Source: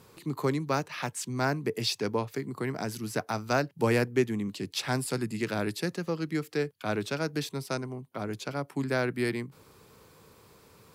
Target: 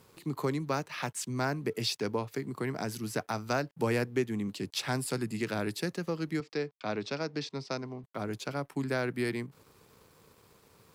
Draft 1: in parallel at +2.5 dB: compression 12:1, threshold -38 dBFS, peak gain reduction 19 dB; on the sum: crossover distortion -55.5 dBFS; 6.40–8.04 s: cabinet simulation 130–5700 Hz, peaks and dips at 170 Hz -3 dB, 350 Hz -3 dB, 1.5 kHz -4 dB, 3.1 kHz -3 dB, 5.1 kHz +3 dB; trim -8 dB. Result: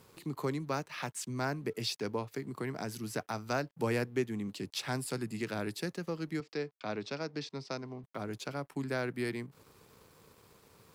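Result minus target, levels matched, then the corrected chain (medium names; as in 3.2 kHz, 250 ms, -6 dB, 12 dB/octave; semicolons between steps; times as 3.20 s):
compression: peak gain reduction +9.5 dB
in parallel at +2.5 dB: compression 12:1, threshold -27.5 dBFS, peak gain reduction 9.5 dB; on the sum: crossover distortion -55.5 dBFS; 6.40–8.04 s: cabinet simulation 130–5700 Hz, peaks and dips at 170 Hz -3 dB, 350 Hz -3 dB, 1.5 kHz -4 dB, 3.1 kHz -3 dB, 5.1 kHz +3 dB; trim -8 dB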